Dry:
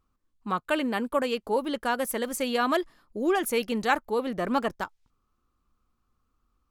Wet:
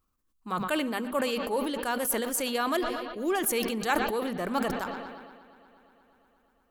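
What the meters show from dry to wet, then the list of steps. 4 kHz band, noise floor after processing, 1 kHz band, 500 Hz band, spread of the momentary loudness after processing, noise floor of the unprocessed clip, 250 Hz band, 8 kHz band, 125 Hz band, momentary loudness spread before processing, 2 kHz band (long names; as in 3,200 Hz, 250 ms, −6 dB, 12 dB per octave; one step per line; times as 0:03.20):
+0.5 dB, −73 dBFS, −2.0 dB, −2.0 dB, 8 LU, −76 dBFS, −1.5 dB, +5.0 dB, +0.5 dB, 7 LU, −1.5 dB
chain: high-shelf EQ 7,100 Hz +11.5 dB
mains-hum notches 50/100/150/200/250 Hz
bucket-brigade delay 119 ms, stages 4,096, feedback 83%, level −20 dB
level that may fall only so fast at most 36 dB per second
level −4 dB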